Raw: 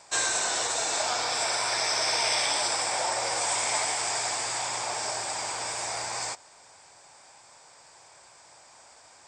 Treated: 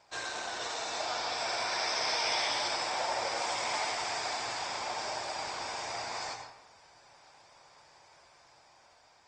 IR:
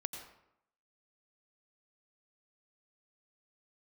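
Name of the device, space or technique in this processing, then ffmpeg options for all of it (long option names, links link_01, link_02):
speakerphone in a meeting room: -filter_complex "[0:a]lowpass=frequency=5800:width=0.5412,lowpass=frequency=5800:width=1.3066,lowshelf=frequency=76:gain=6[link_01];[1:a]atrim=start_sample=2205[link_02];[link_01][link_02]afir=irnorm=-1:irlink=0,dynaudnorm=framelen=550:gausssize=5:maxgain=3dB,volume=-6dB" -ar 48000 -c:a libopus -b:a 32k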